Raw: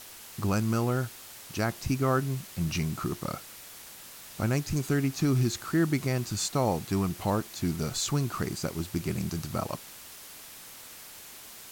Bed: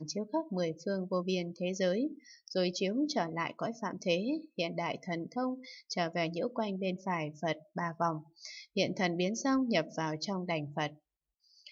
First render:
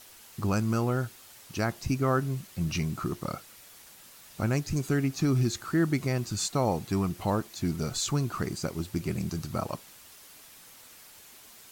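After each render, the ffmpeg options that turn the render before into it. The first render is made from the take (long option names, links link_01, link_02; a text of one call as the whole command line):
ffmpeg -i in.wav -af "afftdn=noise_reduction=6:noise_floor=-47" out.wav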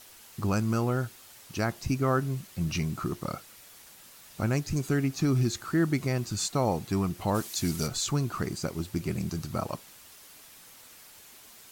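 ffmpeg -i in.wav -filter_complex "[0:a]asplit=3[link_01][link_02][link_03];[link_01]afade=type=out:start_time=7.34:duration=0.02[link_04];[link_02]equalizer=frequency=9500:width_type=o:width=2.9:gain=11.5,afade=type=in:start_time=7.34:duration=0.02,afade=type=out:start_time=7.86:duration=0.02[link_05];[link_03]afade=type=in:start_time=7.86:duration=0.02[link_06];[link_04][link_05][link_06]amix=inputs=3:normalize=0" out.wav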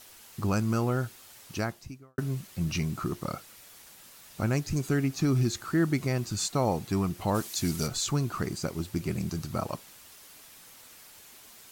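ffmpeg -i in.wav -filter_complex "[0:a]asplit=2[link_01][link_02];[link_01]atrim=end=2.18,asetpts=PTS-STARTPTS,afade=type=out:start_time=1.56:duration=0.62:curve=qua[link_03];[link_02]atrim=start=2.18,asetpts=PTS-STARTPTS,afade=type=in:duration=0.004:curve=hsin[link_04];[link_03][link_04]concat=n=2:v=0:a=1" out.wav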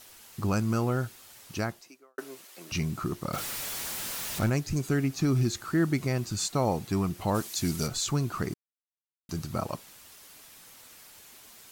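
ffmpeg -i in.wav -filter_complex "[0:a]asettb=1/sr,asplit=3[link_01][link_02][link_03];[link_01]atrim=end=1.814[link_04];[link_02]atrim=start=1.81:end=2.72,asetpts=PTS-STARTPTS,afade=type=in:duration=0.004:curve=qsin,afade=type=out:start_time=0.906:duration=0.004:curve=qsin,highpass=frequency=360:width=0.5412,highpass=frequency=360:width=1.3066[link_05];[link_03]atrim=start=2.716[link_06];[link_04][link_05]acrossfade=duration=0.004:curve1=hsin:curve2=qsin[link_07];[link_07][link_06]acrossfade=duration=0.004:curve1=qsin:curve2=hsin,asettb=1/sr,asplit=3[link_08][link_09][link_10];[link_08]atrim=end=3.334[link_11];[link_09]atrim=start=3.33:end=4.5,asetpts=PTS-STARTPTS,afade=type=in:duration=0.004:curve=qsin,afade=type=out:start_time=1.166:duration=0.004:curve=qsin,aeval=exprs='val(0)+0.5*0.0299*sgn(val(0))':channel_layout=same[link_12];[link_10]atrim=start=4.496[link_13];[link_11][link_12]acrossfade=duration=0.004:curve1=hsin:curve2=qsin[link_14];[link_14][link_13]acrossfade=duration=0.004:curve1=qsin:curve2=hsin,asplit=3[link_15][link_16][link_17];[link_15]atrim=end=8.54,asetpts=PTS-STARTPTS,afade=type=out:start_time=8.536:duration=0.004:curve=hsin[link_18];[link_16]atrim=start=8.54:end=9.29,asetpts=PTS-STARTPTS,volume=0[link_19];[link_17]atrim=start=9.29,asetpts=PTS-STARTPTS,afade=type=in:duration=0.004:curve=hsin[link_20];[link_18][link_19][link_20]concat=n=3:v=0:a=1" out.wav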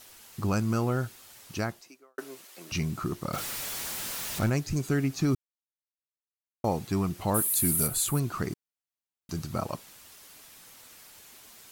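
ffmpeg -i in.wav -filter_complex "[0:a]asettb=1/sr,asplit=3[link_01][link_02][link_03];[link_01]atrim=end=7.344[link_04];[link_02]atrim=start=7.34:end=8.2,asetpts=PTS-STARTPTS,afade=type=in:duration=0.004:curve=qsin,afade=type=out:start_time=0.856:duration=0.004:curve=qsin,highshelf=frequency=7900:width_type=q:width=3:gain=12[link_05];[link_03]atrim=start=8.196[link_06];[link_04][link_05]acrossfade=duration=0.004:curve1=hsin:curve2=qsin[link_07];[link_07][link_06]acrossfade=duration=0.004:curve1=qsin:curve2=hsin,asplit=3[link_08][link_09][link_10];[link_08]atrim=end=5.35,asetpts=PTS-STARTPTS,afade=type=out:start_time=5.346:duration=0.004:curve=hsin[link_11];[link_09]atrim=start=5.35:end=6.64,asetpts=PTS-STARTPTS,volume=0[link_12];[link_10]atrim=start=6.64,asetpts=PTS-STARTPTS,afade=type=in:duration=0.004:curve=hsin[link_13];[link_11][link_12][link_13]concat=n=3:v=0:a=1" out.wav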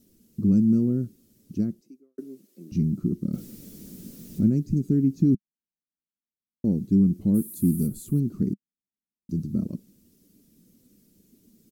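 ffmpeg -i in.wav -af "firequalizer=gain_entry='entry(120,0);entry(200,13);entry(800,-29);entry(5500,-16);entry(8700,-16);entry(14000,-12)':delay=0.05:min_phase=1" out.wav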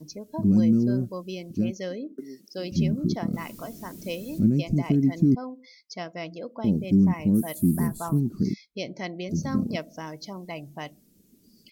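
ffmpeg -i in.wav -i bed.wav -filter_complex "[1:a]volume=-2.5dB[link_01];[0:a][link_01]amix=inputs=2:normalize=0" out.wav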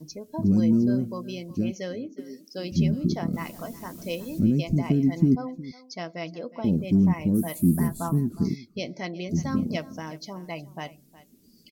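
ffmpeg -i in.wav -filter_complex "[0:a]asplit=2[link_01][link_02];[link_02]adelay=12,volume=-11.5dB[link_03];[link_01][link_03]amix=inputs=2:normalize=0,aecho=1:1:363:0.119" out.wav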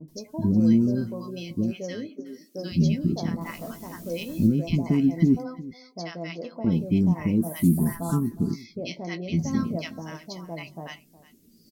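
ffmpeg -i in.wav -filter_complex "[0:a]asplit=2[link_01][link_02];[link_02]adelay=18,volume=-10.5dB[link_03];[link_01][link_03]amix=inputs=2:normalize=0,acrossover=split=920[link_04][link_05];[link_05]adelay=80[link_06];[link_04][link_06]amix=inputs=2:normalize=0" out.wav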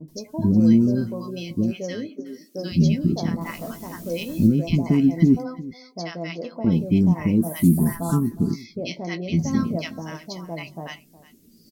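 ffmpeg -i in.wav -af "volume=3.5dB" out.wav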